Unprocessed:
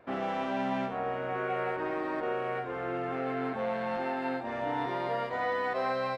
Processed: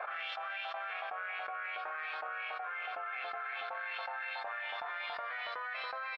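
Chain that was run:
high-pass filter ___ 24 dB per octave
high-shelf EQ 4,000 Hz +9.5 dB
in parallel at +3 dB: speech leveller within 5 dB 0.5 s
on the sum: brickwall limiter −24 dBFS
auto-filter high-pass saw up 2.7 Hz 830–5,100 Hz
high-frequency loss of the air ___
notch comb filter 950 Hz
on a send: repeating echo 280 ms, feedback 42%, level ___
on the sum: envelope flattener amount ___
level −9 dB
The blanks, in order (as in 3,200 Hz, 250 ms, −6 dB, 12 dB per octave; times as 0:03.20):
510 Hz, 460 metres, −15 dB, 100%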